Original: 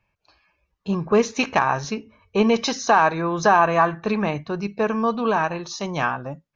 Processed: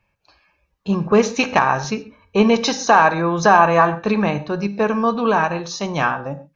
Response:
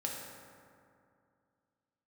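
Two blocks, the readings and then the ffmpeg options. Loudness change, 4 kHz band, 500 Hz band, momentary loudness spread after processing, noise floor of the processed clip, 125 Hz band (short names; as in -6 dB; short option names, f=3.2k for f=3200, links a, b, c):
+4.0 dB, +3.5 dB, +3.5 dB, 11 LU, -69 dBFS, +4.5 dB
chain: -filter_complex "[0:a]asplit=2[a][b];[1:a]atrim=start_sample=2205,atrim=end_sample=6174[c];[b][c]afir=irnorm=-1:irlink=0,volume=-7.5dB[d];[a][d]amix=inputs=2:normalize=0,volume=1dB"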